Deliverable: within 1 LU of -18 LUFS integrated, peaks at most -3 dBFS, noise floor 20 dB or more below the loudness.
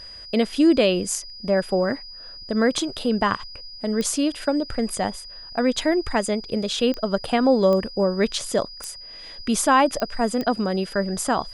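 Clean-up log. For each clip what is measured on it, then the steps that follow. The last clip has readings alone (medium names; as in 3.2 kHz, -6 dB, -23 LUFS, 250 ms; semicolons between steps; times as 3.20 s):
clicks found 6; steady tone 4.9 kHz; tone level -38 dBFS; loudness -22.5 LUFS; peak level -6.5 dBFS; loudness target -18.0 LUFS
-> de-click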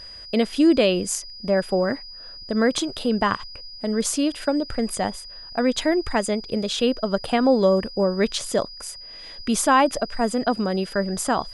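clicks found 0; steady tone 4.9 kHz; tone level -38 dBFS
-> band-stop 4.9 kHz, Q 30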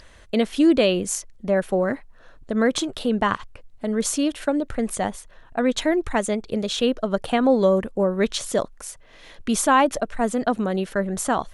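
steady tone not found; loudness -22.5 LUFS; peak level -6.5 dBFS; loudness target -18.0 LUFS
-> trim +4.5 dB; peak limiter -3 dBFS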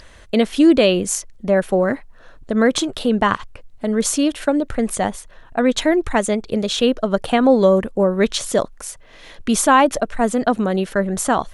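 loudness -18.0 LUFS; peak level -3.0 dBFS; noise floor -44 dBFS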